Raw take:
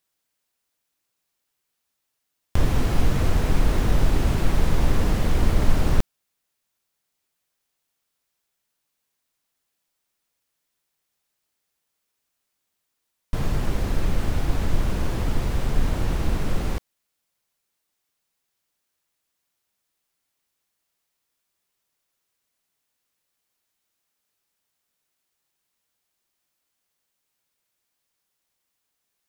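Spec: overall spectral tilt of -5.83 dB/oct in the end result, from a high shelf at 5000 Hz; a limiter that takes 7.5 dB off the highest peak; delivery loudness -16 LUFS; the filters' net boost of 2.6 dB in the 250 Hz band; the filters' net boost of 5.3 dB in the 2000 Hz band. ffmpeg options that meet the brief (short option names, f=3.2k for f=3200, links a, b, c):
-af "equalizer=f=250:t=o:g=3.5,equalizer=f=2k:t=o:g=7,highshelf=f=5k:g=-3,volume=10dB,alimiter=limit=-1.5dB:level=0:latency=1"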